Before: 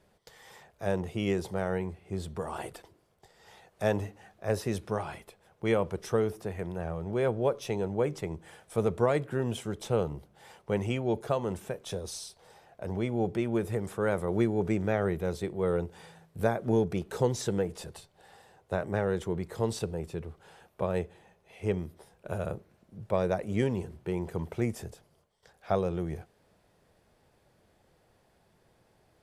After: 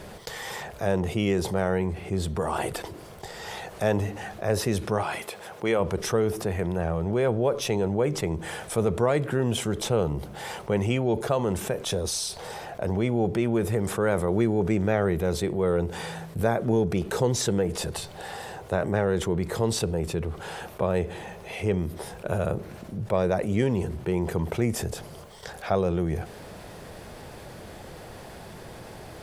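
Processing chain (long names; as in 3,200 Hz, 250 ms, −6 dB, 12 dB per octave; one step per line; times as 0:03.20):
0:05.02–0:05.79: high-pass filter 560 Hz → 270 Hz 6 dB per octave
envelope flattener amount 50%
level +1.5 dB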